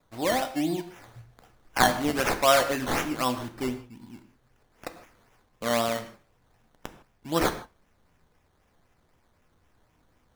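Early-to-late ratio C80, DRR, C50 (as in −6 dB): 13.5 dB, 8.0 dB, 12.0 dB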